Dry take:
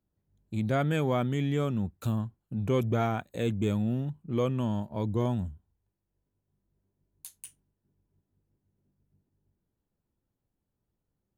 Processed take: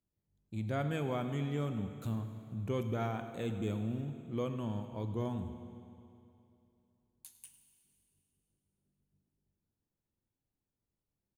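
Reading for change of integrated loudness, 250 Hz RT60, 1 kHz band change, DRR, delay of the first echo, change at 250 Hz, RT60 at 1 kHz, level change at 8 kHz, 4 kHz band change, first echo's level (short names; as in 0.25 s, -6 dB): -7.5 dB, 2.7 s, -7.5 dB, 7.5 dB, 0.103 s, -7.5 dB, 2.7 s, -7.5 dB, -7.0 dB, -17.0 dB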